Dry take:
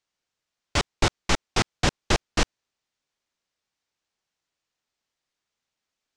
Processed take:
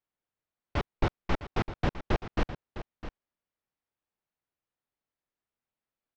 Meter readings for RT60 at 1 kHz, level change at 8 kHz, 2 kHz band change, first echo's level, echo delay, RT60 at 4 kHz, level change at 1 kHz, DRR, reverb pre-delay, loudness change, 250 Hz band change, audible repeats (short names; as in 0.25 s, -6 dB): none, -25.5 dB, -10.0 dB, -12.5 dB, 0.657 s, none, -6.5 dB, none, none, -8.0 dB, -4.0 dB, 1